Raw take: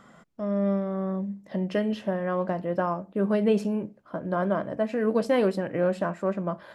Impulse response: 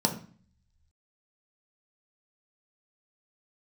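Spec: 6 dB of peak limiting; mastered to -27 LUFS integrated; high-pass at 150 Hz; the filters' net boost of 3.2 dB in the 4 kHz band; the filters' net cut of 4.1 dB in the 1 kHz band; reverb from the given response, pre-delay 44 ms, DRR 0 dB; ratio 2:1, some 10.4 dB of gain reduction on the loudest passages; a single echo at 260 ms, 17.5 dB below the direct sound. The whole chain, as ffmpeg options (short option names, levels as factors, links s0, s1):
-filter_complex "[0:a]highpass=150,equalizer=f=1000:t=o:g=-6,equalizer=f=4000:t=o:g=5,acompressor=threshold=0.0112:ratio=2,alimiter=level_in=1.78:limit=0.0631:level=0:latency=1,volume=0.562,aecho=1:1:260:0.133,asplit=2[s0][s1];[1:a]atrim=start_sample=2205,adelay=44[s2];[s1][s2]afir=irnorm=-1:irlink=0,volume=0.316[s3];[s0][s3]amix=inputs=2:normalize=0,volume=1.41"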